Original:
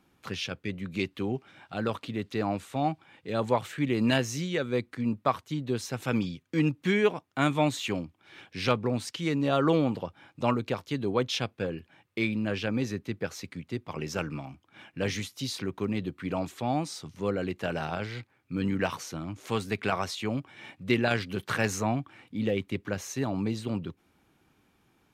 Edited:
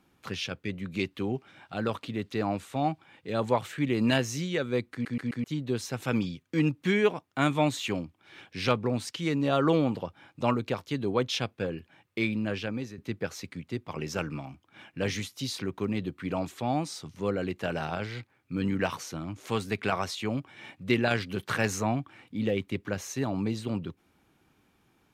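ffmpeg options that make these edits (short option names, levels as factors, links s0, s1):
-filter_complex "[0:a]asplit=6[s0][s1][s2][s3][s4][s5];[s0]atrim=end=5.052[s6];[s1]atrim=start=4.918:end=5.052[s7];[s2]atrim=start=4.918:end=5.052[s8];[s3]atrim=start=4.918:end=5.052[s9];[s4]atrim=start=5.438:end=12.98,asetpts=PTS-STARTPTS,afade=t=out:st=6.812:d=0.73:c=qsin:silence=0.237137[s10];[s5]atrim=start=12.98,asetpts=PTS-STARTPTS,afade=t=in:d=0.004:c=hsin:silence=0.237137[s11];[s6][s7]acrossfade=d=0.004:c1=hsin:c2=hsin[s12];[s12][s8]acrossfade=d=0.004:c1=hsin:c2=hsin[s13];[s13][s9]acrossfade=d=0.004:c1=hsin:c2=hsin[s14];[s10][s11]concat=n=2:v=0:a=1[s15];[s14][s15]acrossfade=d=0.004:c1=hsin:c2=hsin"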